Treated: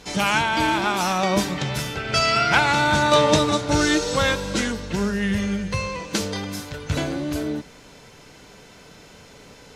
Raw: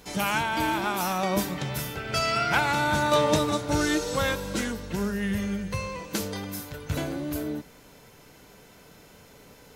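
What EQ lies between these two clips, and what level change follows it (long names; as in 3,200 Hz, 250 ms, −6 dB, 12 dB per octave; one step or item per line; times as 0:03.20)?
high-frequency loss of the air 81 metres
high-shelf EQ 3,400 Hz +9 dB
+5.0 dB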